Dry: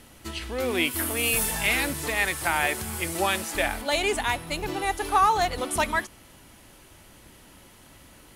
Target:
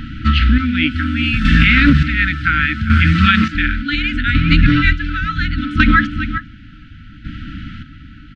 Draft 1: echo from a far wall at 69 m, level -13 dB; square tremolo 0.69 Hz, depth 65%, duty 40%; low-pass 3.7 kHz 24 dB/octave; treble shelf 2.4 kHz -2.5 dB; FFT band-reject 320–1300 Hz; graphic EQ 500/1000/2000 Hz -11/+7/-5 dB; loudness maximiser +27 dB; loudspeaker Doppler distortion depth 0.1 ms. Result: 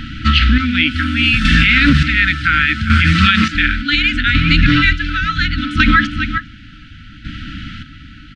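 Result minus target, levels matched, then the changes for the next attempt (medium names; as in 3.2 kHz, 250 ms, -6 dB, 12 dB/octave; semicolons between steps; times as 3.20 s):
4 kHz band +4.0 dB
change: treble shelf 2.4 kHz -14 dB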